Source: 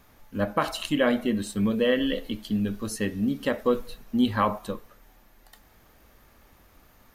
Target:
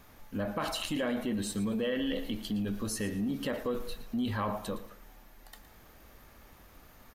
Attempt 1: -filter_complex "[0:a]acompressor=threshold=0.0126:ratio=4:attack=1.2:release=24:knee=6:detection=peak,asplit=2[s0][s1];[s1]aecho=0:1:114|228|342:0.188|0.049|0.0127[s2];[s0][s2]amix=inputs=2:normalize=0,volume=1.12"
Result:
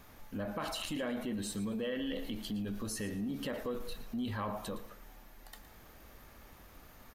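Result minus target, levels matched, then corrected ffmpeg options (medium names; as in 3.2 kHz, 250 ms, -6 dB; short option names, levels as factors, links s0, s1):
compression: peak gain reduction +5 dB
-filter_complex "[0:a]acompressor=threshold=0.0266:ratio=4:attack=1.2:release=24:knee=6:detection=peak,asplit=2[s0][s1];[s1]aecho=0:1:114|228|342:0.188|0.049|0.0127[s2];[s0][s2]amix=inputs=2:normalize=0,volume=1.12"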